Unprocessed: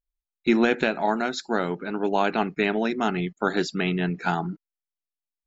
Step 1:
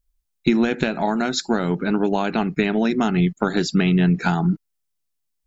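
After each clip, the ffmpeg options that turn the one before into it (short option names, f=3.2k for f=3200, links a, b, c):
-af "acompressor=threshold=-25dB:ratio=6,bass=f=250:g=10,treble=f=4k:g=5,volume=6.5dB"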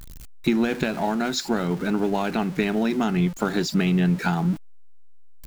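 -af "aeval=exprs='val(0)+0.5*0.0335*sgn(val(0))':c=same,volume=-4dB"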